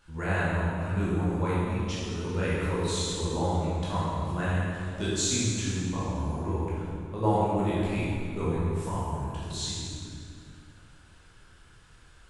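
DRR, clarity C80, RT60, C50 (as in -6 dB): -9.0 dB, -1.0 dB, 2.3 s, -3.0 dB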